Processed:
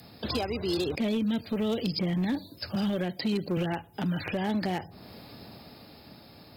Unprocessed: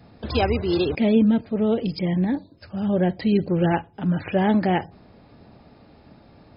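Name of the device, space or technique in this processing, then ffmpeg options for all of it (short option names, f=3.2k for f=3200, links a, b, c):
FM broadcast chain: -filter_complex "[0:a]asettb=1/sr,asplit=3[a][b][c];[a]atrim=end=2.754[d];[b]atrim=start=2.75:end=3.57,asetpts=PTS-STARTPTS,afade=t=in:d=0.004:c=qsin,afade=t=out:st=0.816:d=0.004:c=qsin,highpass=150[e];[c]atrim=start=3.566[f];[d][e]acrossfade=d=0.004:c1=hsin:c2=qsin[g];[g][f]acrossfade=d=0.004:c1=qsin:c2=hsin,highpass=74,highshelf=f=3k:g=4,dynaudnorm=f=200:g=13:m=8dB,acrossover=split=100|1700[h][i][j];[h]acompressor=threshold=-42dB:ratio=4[k];[i]acompressor=threshold=-25dB:ratio=4[l];[j]acompressor=threshold=-43dB:ratio=4[m];[k][l][m]amix=inputs=3:normalize=0,aemphasis=mode=production:type=50fm,alimiter=limit=-18.5dB:level=0:latency=1:release=391,asoftclip=type=hard:threshold=-21.5dB,lowpass=f=15k:w=0.5412,lowpass=f=15k:w=1.3066,aemphasis=mode=production:type=50fm,volume=-1dB"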